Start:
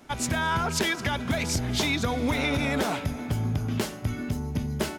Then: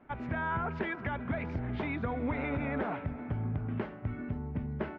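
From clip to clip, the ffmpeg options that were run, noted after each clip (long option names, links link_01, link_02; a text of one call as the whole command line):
ffmpeg -i in.wav -af "lowpass=frequency=2100:width=0.5412,lowpass=frequency=2100:width=1.3066,volume=-6.5dB" out.wav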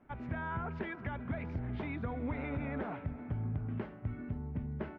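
ffmpeg -i in.wav -af "lowshelf=frequency=230:gain=5.5,volume=-6.5dB" out.wav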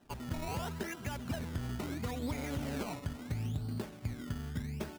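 ffmpeg -i in.wav -af "acrusher=samples=19:mix=1:aa=0.000001:lfo=1:lforange=19:lforate=0.74" out.wav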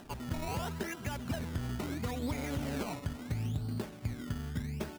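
ffmpeg -i in.wav -af "acompressor=mode=upward:threshold=-45dB:ratio=2.5,volume=1.5dB" out.wav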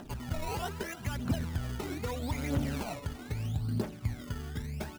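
ffmpeg -i in.wav -af "aphaser=in_gain=1:out_gain=1:delay=2.8:decay=0.51:speed=0.78:type=triangular" out.wav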